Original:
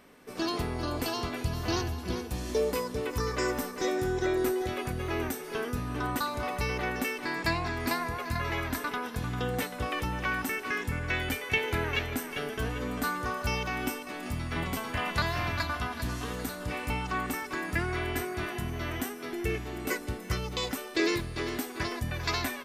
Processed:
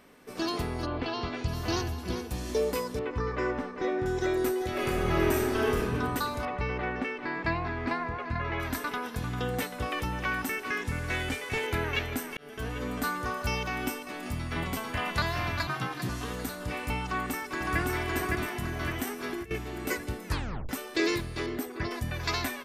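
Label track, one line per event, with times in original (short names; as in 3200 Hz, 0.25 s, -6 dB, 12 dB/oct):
0.850000	1.470000	LPF 2800 Hz -> 6800 Hz 24 dB/oct
2.990000	4.060000	LPF 2400 Hz
4.700000	5.790000	reverb throw, RT60 1.7 s, DRR -5 dB
6.450000	8.600000	LPF 2500 Hz
10.860000	11.670000	delta modulation 64 kbps, step -41 dBFS
12.370000	12.910000	fade in equal-power
15.670000	16.090000	frequency shift +62 Hz
17.040000	17.790000	echo throw 0.56 s, feedback 55%, level -1.5 dB
19.070000	19.510000	negative-ratio compressor -35 dBFS, ratio -0.5
20.260000	20.260000	tape stop 0.43 s
21.460000	21.910000	formant sharpening exponent 1.5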